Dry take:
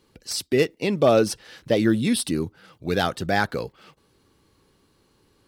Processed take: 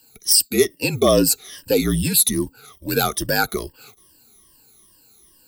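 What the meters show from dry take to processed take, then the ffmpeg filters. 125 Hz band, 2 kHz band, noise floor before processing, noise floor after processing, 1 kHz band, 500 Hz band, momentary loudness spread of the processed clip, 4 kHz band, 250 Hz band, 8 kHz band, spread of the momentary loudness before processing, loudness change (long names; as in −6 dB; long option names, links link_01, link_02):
+3.0 dB, +2.0 dB, −64 dBFS, −55 dBFS, +1.0 dB, +1.5 dB, 12 LU, +8.0 dB, +1.0 dB, +13.5 dB, 15 LU, +4.5 dB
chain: -filter_complex "[0:a]afftfilt=real='re*pow(10,18/40*sin(2*PI*(1.3*log(max(b,1)*sr/1024/100)/log(2)-(-2.4)*(pts-256)/sr)))':imag='im*pow(10,18/40*sin(2*PI*(1.3*log(max(b,1)*sr/1024/100)/log(2)-(-2.4)*(pts-256)/sr)))':win_size=1024:overlap=0.75,crystalizer=i=2:c=0,aemphasis=mode=production:type=50kf,asplit=2[link_01][link_02];[link_02]alimiter=limit=-3.5dB:level=0:latency=1:release=52,volume=-2dB[link_03];[link_01][link_03]amix=inputs=2:normalize=0,adynamicequalizer=threshold=0.1:dfrequency=410:dqfactor=0.83:tfrequency=410:tqfactor=0.83:attack=5:release=100:ratio=0.375:range=2.5:mode=boostabove:tftype=bell,afreqshift=-48,volume=-9.5dB"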